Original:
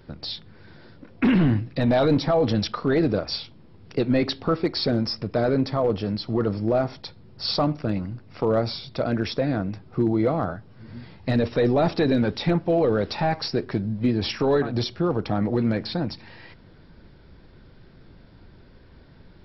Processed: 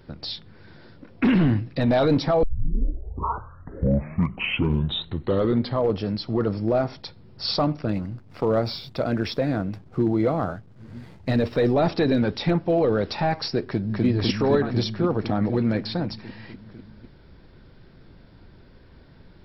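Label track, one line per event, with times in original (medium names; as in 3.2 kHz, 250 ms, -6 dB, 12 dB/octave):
2.430000	2.430000	tape start 3.54 s
7.920000	11.730000	hysteresis with a dead band play -49.5 dBFS
13.640000	14.050000	echo throw 250 ms, feedback 80%, level -0.5 dB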